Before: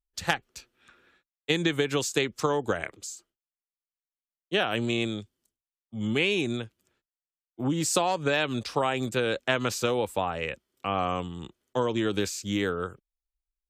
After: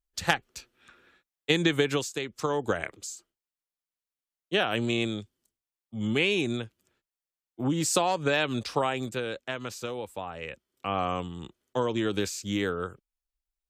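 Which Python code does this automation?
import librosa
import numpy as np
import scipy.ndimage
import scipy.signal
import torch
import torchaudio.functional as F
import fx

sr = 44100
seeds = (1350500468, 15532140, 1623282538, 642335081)

y = fx.gain(x, sr, db=fx.line((1.91, 1.5), (2.14, -8.0), (2.65, 0.0), (8.77, 0.0), (9.47, -8.5), (10.23, -8.5), (10.93, -1.0)))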